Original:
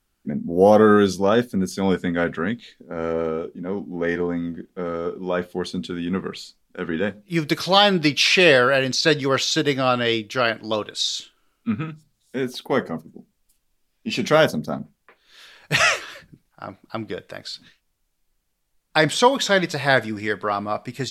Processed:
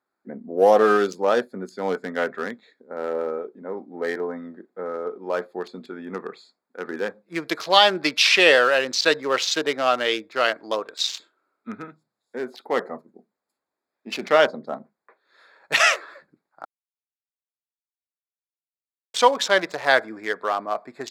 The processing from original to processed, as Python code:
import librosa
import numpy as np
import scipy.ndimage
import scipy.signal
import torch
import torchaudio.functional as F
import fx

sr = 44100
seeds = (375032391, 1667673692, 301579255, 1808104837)

y = fx.lowpass(x, sr, hz=5000.0, slope=12, at=(14.26, 14.67))
y = fx.edit(y, sr, fx.silence(start_s=16.65, length_s=2.49), tone=tone)
y = fx.wiener(y, sr, points=15)
y = scipy.signal.sosfilt(scipy.signal.butter(2, 450.0, 'highpass', fs=sr, output='sos'), y)
y = y * librosa.db_to_amplitude(1.0)